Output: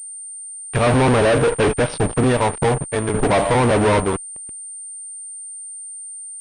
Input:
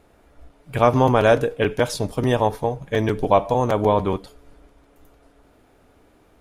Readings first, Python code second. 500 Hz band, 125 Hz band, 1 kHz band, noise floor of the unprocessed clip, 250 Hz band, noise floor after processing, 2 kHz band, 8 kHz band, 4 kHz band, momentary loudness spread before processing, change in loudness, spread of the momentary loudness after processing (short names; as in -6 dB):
+1.5 dB, +4.0 dB, +0.5 dB, -57 dBFS, +3.5 dB, -34 dBFS, +5.0 dB, +15.5 dB, +4.0 dB, 8 LU, +2.5 dB, 15 LU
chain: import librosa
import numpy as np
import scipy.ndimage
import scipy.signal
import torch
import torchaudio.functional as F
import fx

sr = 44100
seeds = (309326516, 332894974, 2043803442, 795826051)

y = fx.air_absorb(x, sr, metres=98.0)
y = fx.tremolo_random(y, sr, seeds[0], hz=3.5, depth_pct=80)
y = fx.fuzz(y, sr, gain_db=32.0, gate_db=-40.0)
y = fx.pwm(y, sr, carrier_hz=8900.0)